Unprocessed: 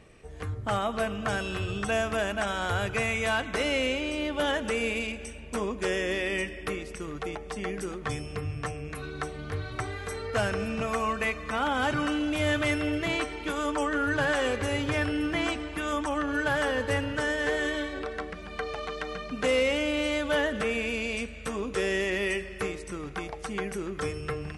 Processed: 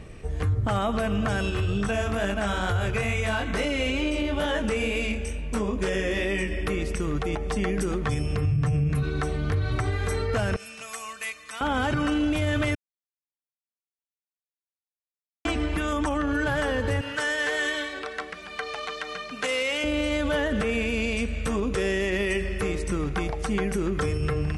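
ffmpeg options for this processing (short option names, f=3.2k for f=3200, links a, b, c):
-filter_complex "[0:a]asplit=3[a][b][c];[a]afade=t=out:st=1.5:d=0.02[d];[b]flanger=delay=20:depth=4.7:speed=2.2,afade=t=in:st=1.5:d=0.02,afade=t=out:st=6.5:d=0.02[e];[c]afade=t=in:st=6.5:d=0.02[f];[d][e][f]amix=inputs=3:normalize=0,asettb=1/sr,asplit=3[g][h][i];[g]atrim=end=8.514[j];[h]atrim=start=8.51:end=9.03,asetpts=PTS-STARTPTS,afade=t=in:d=0.004:c=qsin,afade=t=out:st=0.516:d=0.004:c=qsin,equalizer=f=140:t=o:w=1:g=13[k];[i]atrim=start=9.026[l];[j][k]acrossfade=d=0.004:c1=hsin:c2=qsin[m];[m][l]acrossfade=d=0.004:c1=qsin:c2=hsin,asettb=1/sr,asplit=3[n][o][p];[n]atrim=end=10.564[q];[o]atrim=start=10.56:end=11.61,asetpts=PTS-STARTPTS,afade=t=in:d=0.004:c=qsin,afade=t=out:st=1.046:d=0.004:c=qsin,aderivative[r];[p]atrim=start=11.606[s];[q][r]acrossfade=d=0.004:c1=hsin:c2=qsin[t];[t][s]acrossfade=d=0.004:c1=qsin:c2=hsin,asettb=1/sr,asplit=3[u][v][w];[u]atrim=end=17.014[x];[v]atrim=start=17.01:end=19.84,asetpts=PTS-STARTPTS,afade=t=in:d=0.004:c=qsin,afade=t=out:st=2.826:d=0.004:c=qsin,highpass=f=1.4k:p=1[y];[w]atrim=start=19.836[z];[x][y]acrossfade=d=0.004:c1=hsin:c2=qsin[aa];[aa][z]acrossfade=d=0.004:c1=qsin:c2=hsin,asplit=3[ab][ac][ad];[ab]atrim=end=12.75,asetpts=PTS-STARTPTS,afade=t=out:st=12.746:d=0.004:c=hsin[ae];[ac]atrim=start=12.75:end=15.45,asetpts=PTS-STARTPTS,volume=0[af];[ad]atrim=start=15.45,asetpts=PTS-STARTPTS,afade=t=in:d=0.004:c=hsin[ag];[ae][af][ag]concat=n=3:v=0:a=1,lowshelf=f=200:g=10,alimiter=limit=-24dB:level=0:latency=1:release=81,volume=6.5dB"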